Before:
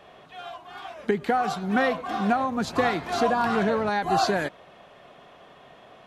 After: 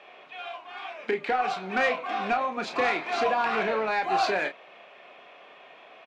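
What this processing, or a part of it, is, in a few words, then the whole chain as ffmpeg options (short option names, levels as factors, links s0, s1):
intercom: -filter_complex "[0:a]highpass=370,lowpass=4900,equalizer=f=2400:t=o:w=0.38:g=11,asoftclip=type=tanh:threshold=0.168,asplit=2[s0][s1];[s1]adelay=32,volume=0.398[s2];[s0][s2]amix=inputs=2:normalize=0,volume=0.891"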